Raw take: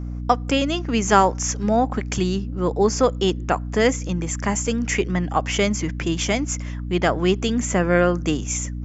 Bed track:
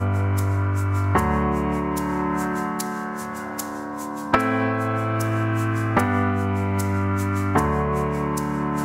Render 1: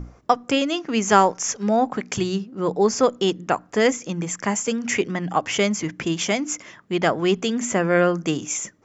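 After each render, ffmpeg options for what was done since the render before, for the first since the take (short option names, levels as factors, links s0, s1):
-af "bandreject=f=60:t=h:w=6,bandreject=f=120:t=h:w=6,bandreject=f=180:t=h:w=6,bandreject=f=240:t=h:w=6,bandreject=f=300:t=h:w=6"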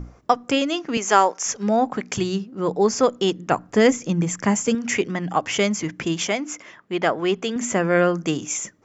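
-filter_complex "[0:a]asettb=1/sr,asplit=3[s0][s1][s2];[s0]atrim=end=0.974[s3];[s1]atrim=start=0.97:end=1.46,asetpts=PTS-STARTPTS,afade=t=in:d=0.004:c=qsin,afade=t=out:st=0.486:d=0.004:c=qsin,highpass=380[s4];[s2]atrim=start=1.456[s5];[s3][s4]acrossfade=d=0.004:c1=hsin:c2=qsin[s6];[s6][s5]acrossfade=d=0.004:c1=qsin:c2=hsin,asettb=1/sr,asplit=3[s7][s8][s9];[s7]atrim=end=3.514[s10];[s8]atrim=start=3.51:end=4.75,asetpts=PTS-STARTPTS,afade=t=in:d=0.004:c=qsin,afade=t=out:st=1.236:d=0.004:c=qsin,lowshelf=f=270:g=9[s11];[s9]atrim=start=4.746[s12];[s10][s11]acrossfade=d=0.004:c1=hsin:c2=qsin[s13];[s13][s12]acrossfade=d=0.004:c1=qsin:c2=hsin,asettb=1/sr,asplit=3[s14][s15][s16];[s14]atrim=end=6.274[s17];[s15]atrim=start=6.27:end=7.56,asetpts=PTS-STARTPTS,afade=t=in:d=0.004:c=qsin,afade=t=out:st=1.286:d=0.004:c=qsin,bass=f=250:g=-7,treble=f=4000:g=-6[s18];[s16]atrim=start=7.556[s19];[s17][s18]acrossfade=d=0.004:c1=hsin:c2=qsin[s20];[s20][s19]acrossfade=d=0.004:c1=qsin:c2=hsin"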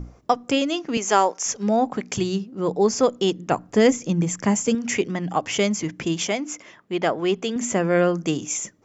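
-af "equalizer=f=1500:t=o:w=1.3:g=-4.5"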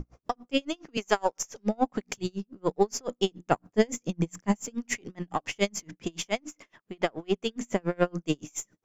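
-af "aeval=exprs='if(lt(val(0),0),0.708*val(0),val(0))':c=same,aeval=exprs='val(0)*pow(10,-37*(0.5-0.5*cos(2*PI*7.1*n/s))/20)':c=same"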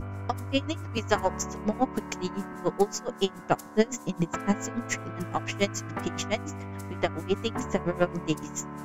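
-filter_complex "[1:a]volume=0.178[s0];[0:a][s0]amix=inputs=2:normalize=0"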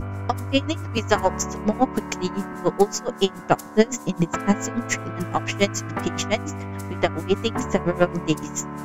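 -af "volume=2,alimiter=limit=0.794:level=0:latency=1"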